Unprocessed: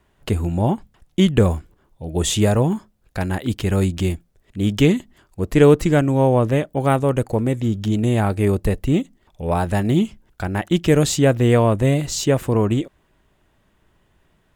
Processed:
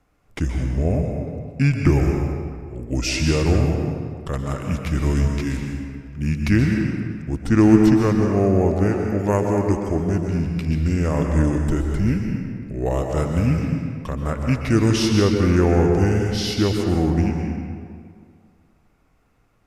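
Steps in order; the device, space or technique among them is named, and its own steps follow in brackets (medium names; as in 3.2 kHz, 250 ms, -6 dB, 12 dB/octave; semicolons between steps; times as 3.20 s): slowed and reverbed (tape speed -26%; reverberation RT60 2.1 s, pre-delay 118 ms, DRR 2 dB); trim -3 dB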